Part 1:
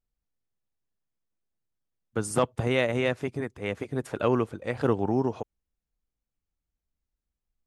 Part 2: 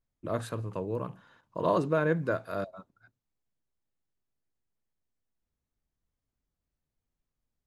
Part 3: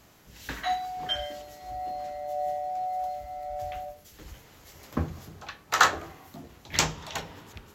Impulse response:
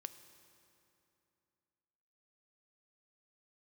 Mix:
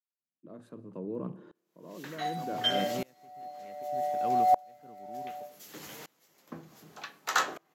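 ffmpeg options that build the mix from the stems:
-filter_complex "[0:a]volume=-11.5dB[link_01];[1:a]equalizer=frequency=290:width=0.48:gain=13.5,adelay=200,volume=-9dB,asplit=2[link_02][link_03];[link_03]volume=-5dB[link_04];[2:a]highshelf=frequency=7200:gain=4,dynaudnorm=framelen=100:gausssize=5:maxgain=14.5dB,flanger=delay=5.6:depth=2.6:regen=81:speed=0.41:shape=triangular,adelay=1550,volume=-1dB[link_05];[link_01][link_02]amix=inputs=2:normalize=0,bass=frequency=250:gain=11,treble=frequency=4000:gain=0,alimiter=limit=-20dB:level=0:latency=1:release=24,volume=0dB[link_06];[3:a]atrim=start_sample=2205[link_07];[link_04][link_07]afir=irnorm=-1:irlink=0[link_08];[link_05][link_06][link_08]amix=inputs=3:normalize=0,highpass=frequency=170:width=0.5412,highpass=frequency=170:width=1.3066,aeval=exprs='val(0)*pow(10,-28*if(lt(mod(-0.66*n/s,1),2*abs(-0.66)/1000),1-mod(-0.66*n/s,1)/(2*abs(-0.66)/1000),(mod(-0.66*n/s,1)-2*abs(-0.66)/1000)/(1-2*abs(-0.66)/1000))/20)':channel_layout=same"

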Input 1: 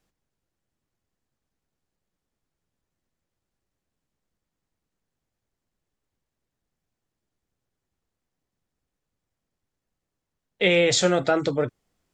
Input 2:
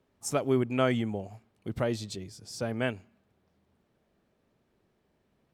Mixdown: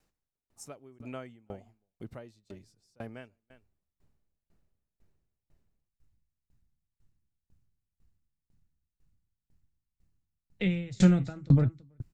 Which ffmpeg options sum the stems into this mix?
ffmpeg -i stem1.wav -i stem2.wav -filter_complex "[0:a]asubboost=boost=11:cutoff=150,acrossover=split=270[link_01][link_02];[link_02]acompressor=threshold=-29dB:ratio=2.5[link_03];[link_01][link_03]amix=inputs=2:normalize=0,volume=2dB,asplit=2[link_04][link_05];[link_05]volume=-17dB[link_06];[1:a]adelay=350,volume=-5dB,asplit=2[link_07][link_08];[link_08]volume=-22.5dB[link_09];[link_06][link_09]amix=inputs=2:normalize=0,aecho=0:1:329:1[link_10];[link_04][link_07][link_10]amix=inputs=3:normalize=0,bandreject=frequency=3300:width=13,aeval=exprs='val(0)*pow(10,-30*if(lt(mod(2*n/s,1),2*abs(2)/1000),1-mod(2*n/s,1)/(2*abs(2)/1000),(mod(2*n/s,1)-2*abs(2)/1000)/(1-2*abs(2)/1000))/20)':channel_layout=same" out.wav

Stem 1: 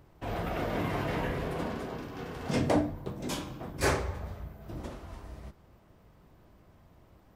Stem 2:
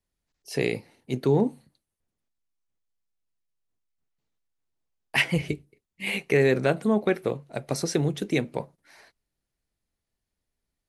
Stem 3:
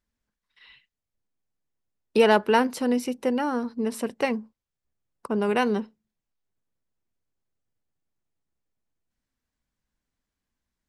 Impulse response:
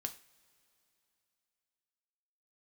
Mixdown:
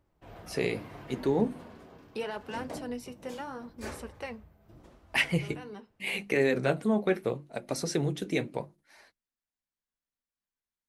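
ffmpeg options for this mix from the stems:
-filter_complex "[0:a]volume=-10dB[link_01];[1:a]bandreject=frequency=50:width_type=h:width=6,bandreject=frequency=100:width_type=h:width=6,bandreject=frequency=150:width_type=h:width=6,bandreject=frequency=200:width_type=h:width=6,bandreject=frequency=250:width_type=h:width=6,bandreject=frequency=300:width_type=h:width=6,bandreject=frequency=350:width_type=h:width=6,agate=range=-33dB:threshold=-53dB:ratio=3:detection=peak,volume=0.5dB,asplit=2[link_02][link_03];[2:a]lowshelf=frequency=320:gain=-9.5,alimiter=limit=-14.5dB:level=0:latency=1,volume=-8dB,asplit=2[link_04][link_05];[link_05]volume=-12.5dB[link_06];[link_03]apad=whole_len=479808[link_07];[link_04][link_07]sidechaincompress=threshold=-35dB:ratio=8:attack=6.7:release=313[link_08];[3:a]atrim=start_sample=2205[link_09];[link_06][link_09]afir=irnorm=-1:irlink=0[link_10];[link_01][link_02][link_08][link_10]amix=inputs=4:normalize=0,flanger=delay=3.3:depth=7.9:regen=-52:speed=0.78:shape=sinusoidal"

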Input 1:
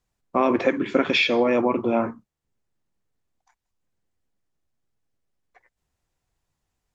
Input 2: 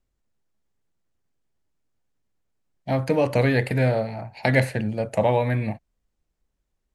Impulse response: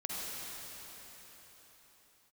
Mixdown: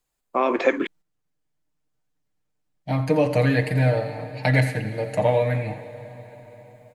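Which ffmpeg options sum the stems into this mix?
-filter_complex "[0:a]highpass=340,highshelf=frequency=6200:gain=8.5,bandreject=frequency=5700:width=7.4,volume=-1dB,asplit=3[link_01][link_02][link_03];[link_01]atrim=end=0.87,asetpts=PTS-STARTPTS,afade=type=out:start_time=0.866:duration=0.004:curve=hsin[link_04];[link_02]atrim=start=0.87:end=3.27,asetpts=PTS-STARTPTS,volume=0[link_05];[link_03]atrim=start=3.27,asetpts=PTS-STARTPTS,afade=type=in:duration=0.004:curve=hsin[link_06];[link_04][link_05][link_06]concat=n=3:v=0:a=1,asplit=2[link_07][link_08];[1:a]bandreject=frequency=400:width=12,aecho=1:1:6.6:0.76,volume=-3.5dB,asplit=3[link_09][link_10][link_11];[link_10]volume=-21.5dB[link_12];[link_11]volume=-21dB[link_13];[link_08]apad=whole_len=306553[link_14];[link_09][link_14]sidechaingate=range=-8dB:threshold=-51dB:ratio=16:detection=peak[link_15];[2:a]atrim=start_sample=2205[link_16];[link_12][link_16]afir=irnorm=-1:irlink=0[link_17];[link_13]aecho=0:1:85:1[link_18];[link_07][link_15][link_17][link_18]amix=inputs=4:normalize=0,dynaudnorm=framelen=460:gausssize=3:maxgain=8dB"

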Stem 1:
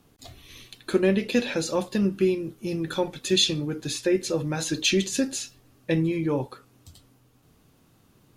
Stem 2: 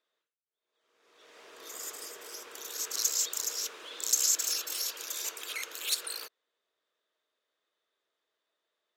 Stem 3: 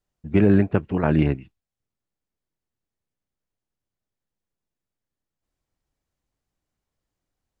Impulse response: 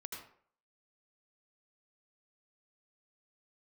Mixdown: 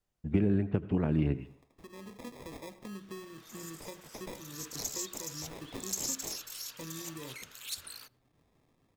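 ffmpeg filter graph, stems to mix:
-filter_complex "[0:a]highshelf=frequency=3100:gain=6,acompressor=threshold=-32dB:ratio=3,acrusher=samples=30:mix=1:aa=0.000001,adelay=900,volume=-13dB,asplit=2[link_01][link_02];[link_02]volume=-11dB[link_03];[1:a]highpass=720,asoftclip=type=hard:threshold=-17dB,adelay=1800,volume=-8.5dB,asplit=2[link_04][link_05];[link_05]volume=-23.5dB[link_06];[2:a]acompressor=threshold=-21dB:ratio=6,volume=-3dB,asplit=3[link_07][link_08][link_09];[link_08]volume=-10.5dB[link_10];[link_09]apad=whole_len=408455[link_11];[link_01][link_11]sidechaincompress=threshold=-58dB:ratio=4:attack=7.9:release=390[link_12];[3:a]atrim=start_sample=2205[link_13];[link_03][link_06][link_10]amix=inputs=3:normalize=0[link_14];[link_14][link_13]afir=irnorm=-1:irlink=0[link_15];[link_12][link_04][link_07][link_15]amix=inputs=4:normalize=0,acrossover=split=460|3000[link_16][link_17][link_18];[link_17]acompressor=threshold=-49dB:ratio=2[link_19];[link_16][link_19][link_18]amix=inputs=3:normalize=0"

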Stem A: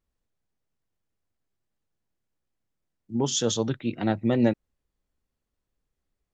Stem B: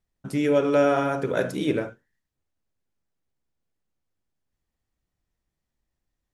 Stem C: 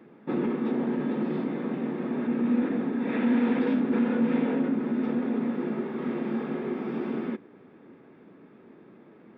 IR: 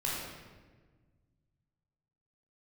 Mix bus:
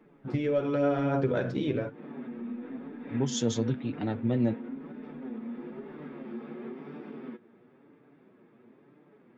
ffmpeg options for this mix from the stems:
-filter_complex "[0:a]volume=-3.5dB[link_01];[1:a]agate=range=-10dB:threshold=-31dB:ratio=16:detection=peak,lowpass=frequency=4800:width=0.5412,lowpass=frequency=4800:width=1.3066,acontrast=87,volume=-5dB,asplit=2[link_02][link_03];[2:a]acompressor=threshold=-31dB:ratio=6,flanger=delay=4.3:depth=5.4:regen=65:speed=1.2:shape=triangular,volume=1.5dB[link_04];[link_03]apad=whole_len=413359[link_05];[link_04][link_05]sidechaincompress=threshold=-35dB:ratio=8:attack=6.3:release=207[link_06];[link_01][link_02]amix=inputs=2:normalize=0,lowshelf=frequency=410:gain=7.5,acompressor=threshold=-21dB:ratio=5,volume=0dB[link_07];[link_06][link_07]amix=inputs=2:normalize=0,flanger=delay=6.7:depth=2:regen=36:speed=1:shape=sinusoidal"

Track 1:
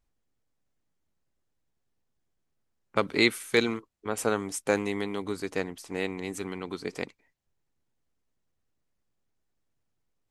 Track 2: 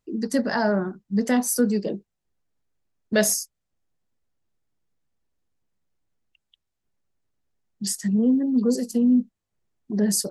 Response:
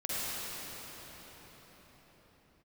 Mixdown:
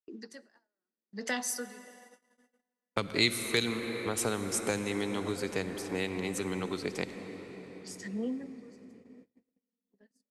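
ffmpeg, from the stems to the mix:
-filter_complex "[0:a]agate=range=-33dB:threshold=-43dB:ratio=3:detection=peak,volume=1.5dB,asplit=2[link_01][link_02];[link_02]volume=-16.5dB[link_03];[1:a]bandpass=frequency=2400:width_type=q:width=0.64:csg=0,aeval=exprs='val(0)*pow(10,-35*(0.5-0.5*cos(2*PI*0.73*n/s))/20)':channel_layout=same,volume=2.5dB,asplit=2[link_04][link_05];[link_05]volume=-23dB[link_06];[2:a]atrim=start_sample=2205[link_07];[link_03][link_06]amix=inputs=2:normalize=0[link_08];[link_08][link_07]afir=irnorm=-1:irlink=0[link_09];[link_01][link_04][link_09]amix=inputs=3:normalize=0,agate=range=-29dB:threshold=-54dB:ratio=16:detection=peak,acrossover=split=160|3000[link_10][link_11][link_12];[link_11]acompressor=threshold=-31dB:ratio=4[link_13];[link_10][link_13][link_12]amix=inputs=3:normalize=0"

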